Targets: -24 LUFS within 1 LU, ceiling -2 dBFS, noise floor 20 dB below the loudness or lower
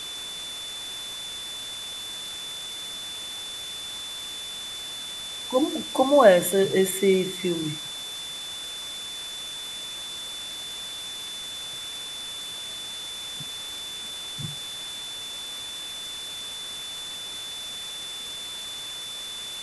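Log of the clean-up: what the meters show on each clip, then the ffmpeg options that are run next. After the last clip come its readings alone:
steady tone 3500 Hz; tone level -34 dBFS; noise floor -36 dBFS; noise floor target -49 dBFS; loudness -28.5 LUFS; peak -3.5 dBFS; loudness target -24.0 LUFS
-> -af "bandreject=f=3.5k:w=30"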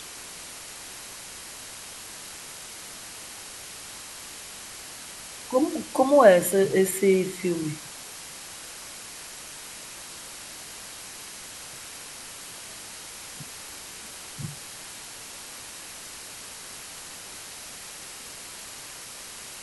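steady tone none; noise floor -42 dBFS; noise floor target -50 dBFS
-> -af "afftdn=nr=8:nf=-42"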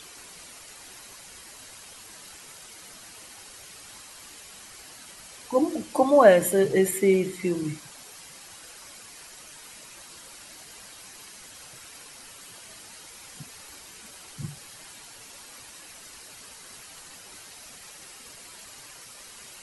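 noise floor -47 dBFS; loudness -22.5 LUFS; peak -4.0 dBFS; loudness target -24.0 LUFS
-> -af "volume=-1.5dB"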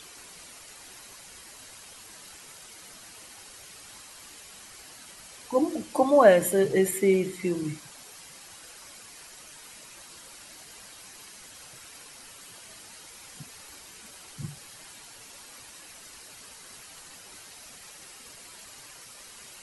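loudness -24.0 LUFS; peak -5.5 dBFS; noise floor -48 dBFS

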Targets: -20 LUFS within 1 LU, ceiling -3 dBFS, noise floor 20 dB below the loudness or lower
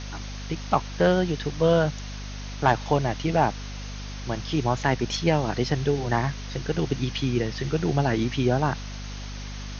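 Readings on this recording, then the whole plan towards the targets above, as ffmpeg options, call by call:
hum 50 Hz; harmonics up to 250 Hz; hum level -34 dBFS; noise floor -35 dBFS; noise floor target -45 dBFS; loudness -25.0 LUFS; peak -5.5 dBFS; loudness target -20.0 LUFS
-> -af "bandreject=f=50:t=h:w=6,bandreject=f=100:t=h:w=6,bandreject=f=150:t=h:w=6,bandreject=f=200:t=h:w=6,bandreject=f=250:t=h:w=6"
-af "afftdn=nr=10:nf=-35"
-af "volume=5dB,alimiter=limit=-3dB:level=0:latency=1"

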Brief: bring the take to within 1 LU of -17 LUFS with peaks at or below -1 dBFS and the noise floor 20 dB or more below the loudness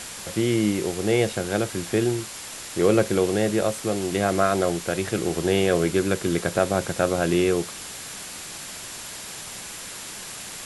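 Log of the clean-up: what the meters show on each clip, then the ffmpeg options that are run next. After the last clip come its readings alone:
steady tone 7300 Hz; tone level -46 dBFS; noise floor -37 dBFS; noise floor target -45 dBFS; loudness -24.5 LUFS; peak -6.5 dBFS; loudness target -17.0 LUFS
-> -af "bandreject=f=7.3k:w=30"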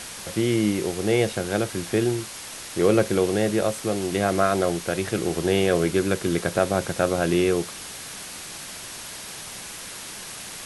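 steady tone none; noise floor -38 dBFS; noise floor target -45 dBFS
-> -af "afftdn=nr=7:nf=-38"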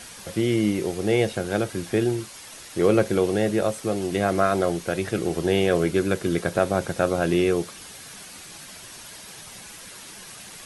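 noise floor -42 dBFS; noise floor target -44 dBFS
-> -af "afftdn=nr=6:nf=-42"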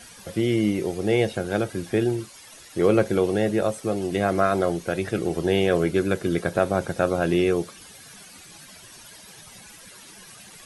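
noise floor -46 dBFS; loudness -24.0 LUFS; peak -6.5 dBFS; loudness target -17.0 LUFS
-> -af "volume=7dB,alimiter=limit=-1dB:level=0:latency=1"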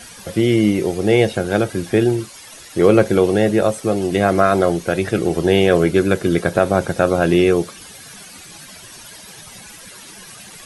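loudness -17.0 LUFS; peak -1.0 dBFS; noise floor -39 dBFS

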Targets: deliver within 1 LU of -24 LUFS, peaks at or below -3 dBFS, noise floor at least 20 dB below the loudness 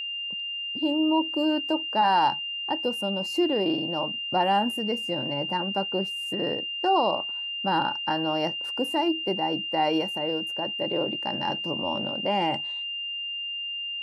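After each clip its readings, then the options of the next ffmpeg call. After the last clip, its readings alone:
steady tone 2800 Hz; tone level -30 dBFS; loudness -26.5 LUFS; peak -10.5 dBFS; loudness target -24.0 LUFS
-> -af "bandreject=f=2.8k:w=30"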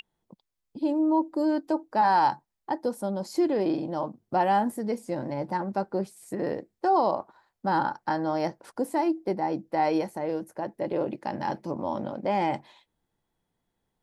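steady tone none; loudness -28.0 LUFS; peak -11.5 dBFS; loudness target -24.0 LUFS
-> -af "volume=4dB"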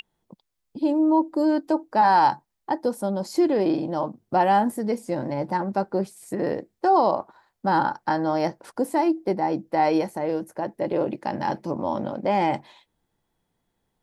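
loudness -24.0 LUFS; peak -7.5 dBFS; noise floor -77 dBFS

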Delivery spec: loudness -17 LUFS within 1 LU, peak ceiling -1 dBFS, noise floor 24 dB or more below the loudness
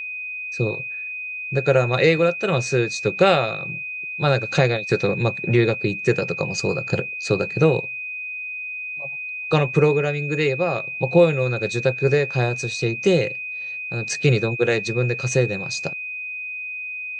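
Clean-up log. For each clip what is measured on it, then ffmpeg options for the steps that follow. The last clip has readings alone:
steady tone 2500 Hz; tone level -28 dBFS; loudness -21.5 LUFS; peak -3.0 dBFS; loudness target -17.0 LUFS
-> -af "bandreject=f=2.5k:w=30"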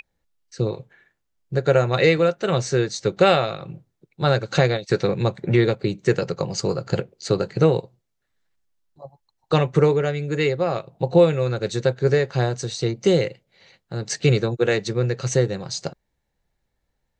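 steady tone none; loudness -21.5 LUFS; peak -3.5 dBFS; loudness target -17.0 LUFS
-> -af "volume=4.5dB,alimiter=limit=-1dB:level=0:latency=1"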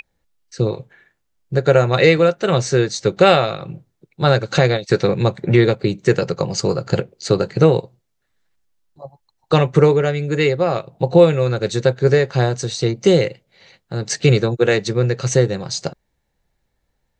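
loudness -17.0 LUFS; peak -1.0 dBFS; noise floor -71 dBFS

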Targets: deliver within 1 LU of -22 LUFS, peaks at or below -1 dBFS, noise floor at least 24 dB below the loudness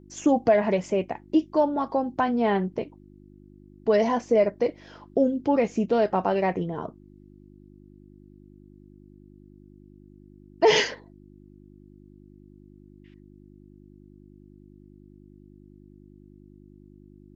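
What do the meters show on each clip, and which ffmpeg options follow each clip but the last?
hum 50 Hz; harmonics up to 350 Hz; hum level -51 dBFS; loudness -24.5 LUFS; peak -8.5 dBFS; loudness target -22.0 LUFS
-> -af "bandreject=f=50:t=h:w=4,bandreject=f=100:t=h:w=4,bandreject=f=150:t=h:w=4,bandreject=f=200:t=h:w=4,bandreject=f=250:t=h:w=4,bandreject=f=300:t=h:w=4,bandreject=f=350:t=h:w=4"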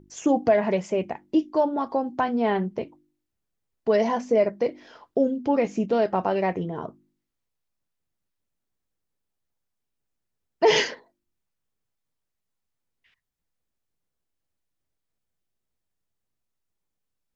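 hum none; loudness -24.5 LUFS; peak -8.5 dBFS; loudness target -22.0 LUFS
-> -af "volume=2.5dB"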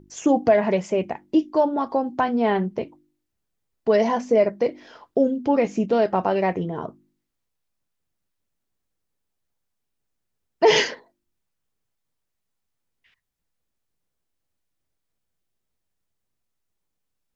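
loudness -22.0 LUFS; peak -6.0 dBFS; noise floor -79 dBFS

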